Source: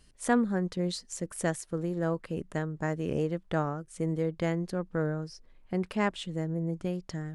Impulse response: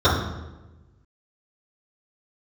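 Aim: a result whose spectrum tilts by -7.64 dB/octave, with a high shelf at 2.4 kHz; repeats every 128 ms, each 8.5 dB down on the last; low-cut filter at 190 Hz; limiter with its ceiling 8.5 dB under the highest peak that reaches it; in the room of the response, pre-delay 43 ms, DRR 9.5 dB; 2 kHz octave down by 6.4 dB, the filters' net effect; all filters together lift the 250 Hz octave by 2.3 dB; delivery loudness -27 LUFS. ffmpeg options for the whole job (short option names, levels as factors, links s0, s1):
-filter_complex "[0:a]highpass=190,equalizer=f=250:t=o:g=6,equalizer=f=2000:t=o:g=-6.5,highshelf=f=2400:g=-4,alimiter=limit=0.0891:level=0:latency=1,aecho=1:1:128|256|384|512:0.376|0.143|0.0543|0.0206,asplit=2[s0][s1];[1:a]atrim=start_sample=2205,adelay=43[s2];[s1][s2]afir=irnorm=-1:irlink=0,volume=0.0266[s3];[s0][s3]amix=inputs=2:normalize=0,volume=1.68"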